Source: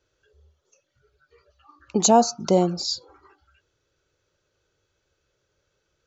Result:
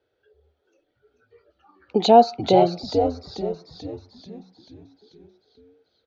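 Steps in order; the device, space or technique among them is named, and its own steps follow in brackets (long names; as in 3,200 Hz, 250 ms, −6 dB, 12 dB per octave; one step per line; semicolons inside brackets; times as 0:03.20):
frequency-shifting delay pedal into a guitar cabinet (echo with shifted repeats 438 ms, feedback 55%, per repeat −90 Hz, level −6 dB; loudspeaker in its box 93–3,900 Hz, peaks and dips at 140 Hz −7 dB, 260 Hz +3 dB, 440 Hz +7 dB, 750 Hz +9 dB, 1,100 Hz −7 dB, 2,700 Hz −5 dB)
0:01.97–0:02.80: flat-topped bell 2,900 Hz +9.5 dB 1.3 octaves
level −1.5 dB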